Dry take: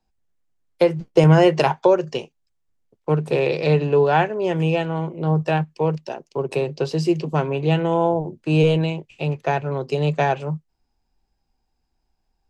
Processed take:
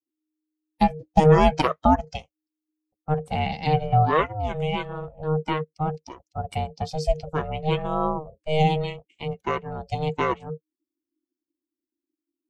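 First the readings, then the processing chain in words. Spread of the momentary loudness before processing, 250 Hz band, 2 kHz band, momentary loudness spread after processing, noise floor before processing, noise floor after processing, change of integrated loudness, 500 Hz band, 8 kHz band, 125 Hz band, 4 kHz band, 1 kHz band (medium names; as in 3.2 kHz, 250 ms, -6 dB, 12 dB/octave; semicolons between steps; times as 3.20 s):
10 LU, -5.0 dB, -4.5 dB, 15 LU, -73 dBFS, under -85 dBFS, -4.0 dB, -6.0 dB, no reading, -5.0 dB, -2.5 dB, +1.0 dB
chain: expander on every frequency bin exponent 1.5; ring modulator 310 Hz; trim +2 dB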